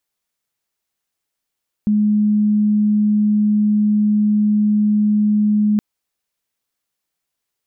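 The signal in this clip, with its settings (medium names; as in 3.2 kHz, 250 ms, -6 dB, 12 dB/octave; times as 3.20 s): tone sine 210 Hz -12 dBFS 3.92 s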